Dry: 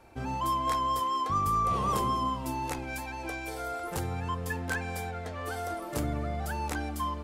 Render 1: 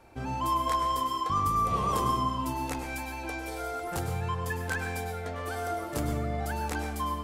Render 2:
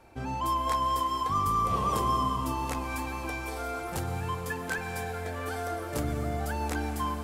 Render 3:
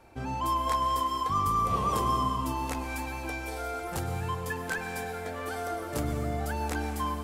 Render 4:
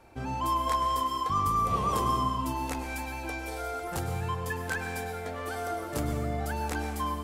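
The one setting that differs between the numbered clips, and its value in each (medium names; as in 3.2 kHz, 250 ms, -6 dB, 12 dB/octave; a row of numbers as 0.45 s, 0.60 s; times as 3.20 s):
plate-style reverb, RT60: 0.52 s, 5.2 s, 2.5 s, 1.2 s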